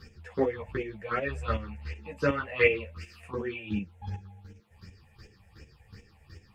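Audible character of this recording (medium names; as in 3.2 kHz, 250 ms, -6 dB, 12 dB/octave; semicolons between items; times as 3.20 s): phasing stages 6, 2.7 Hz, lowest notch 310–1200 Hz; chopped level 2.7 Hz, depth 65%, duty 20%; a shimmering, thickened sound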